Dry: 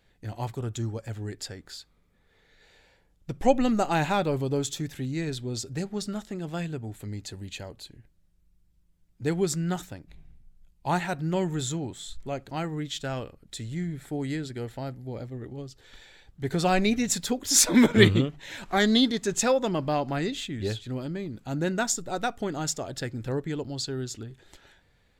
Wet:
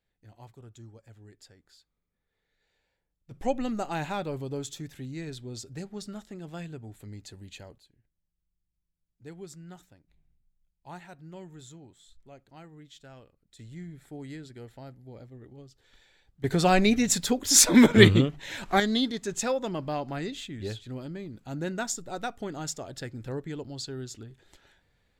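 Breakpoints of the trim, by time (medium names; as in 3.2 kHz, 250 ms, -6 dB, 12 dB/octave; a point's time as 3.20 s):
-17 dB
from 3.31 s -7 dB
from 7.78 s -17.5 dB
from 13.59 s -10 dB
from 16.44 s +2 dB
from 18.80 s -5 dB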